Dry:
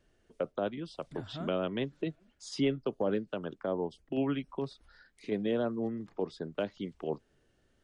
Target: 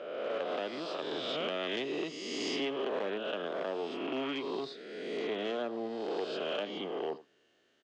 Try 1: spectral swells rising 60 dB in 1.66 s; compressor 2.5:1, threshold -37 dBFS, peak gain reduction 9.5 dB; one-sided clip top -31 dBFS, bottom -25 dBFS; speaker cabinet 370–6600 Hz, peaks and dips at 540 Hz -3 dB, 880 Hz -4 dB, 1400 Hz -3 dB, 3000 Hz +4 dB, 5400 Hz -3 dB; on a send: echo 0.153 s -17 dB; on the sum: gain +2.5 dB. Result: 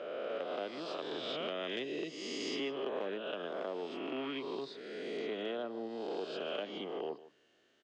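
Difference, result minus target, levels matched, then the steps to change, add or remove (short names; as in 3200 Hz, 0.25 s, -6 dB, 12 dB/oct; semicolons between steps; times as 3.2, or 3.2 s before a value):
echo 69 ms late; compressor: peak gain reduction +4.5 dB
change: compressor 2.5:1, threshold -29.5 dBFS, peak gain reduction 5 dB; change: echo 84 ms -17 dB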